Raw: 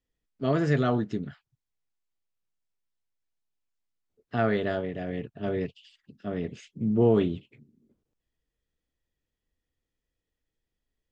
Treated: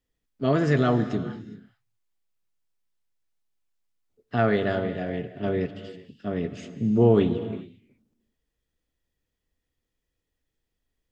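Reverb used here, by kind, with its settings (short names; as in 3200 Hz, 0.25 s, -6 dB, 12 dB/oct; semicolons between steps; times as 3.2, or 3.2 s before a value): non-linear reverb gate 0.44 s flat, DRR 11 dB; gain +3 dB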